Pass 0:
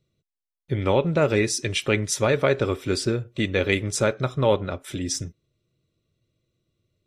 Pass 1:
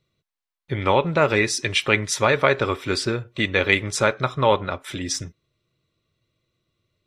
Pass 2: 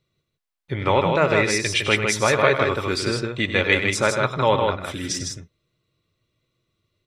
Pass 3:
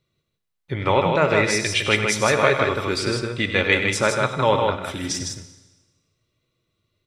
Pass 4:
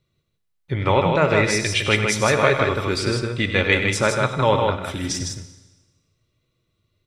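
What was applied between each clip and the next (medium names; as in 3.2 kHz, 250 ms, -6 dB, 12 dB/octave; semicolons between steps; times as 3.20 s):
ten-band graphic EQ 1 kHz +9 dB, 2 kHz +6 dB, 4 kHz +5 dB; trim -1.5 dB
loudspeakers at several distances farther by 33 m -10 dB, 54 m -4 dB; trim -1 dB
Schroeder reverb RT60 1.2 s, combs from 26 ms, DRR 11.5 dB
bass shelf 130 Hz +7 dB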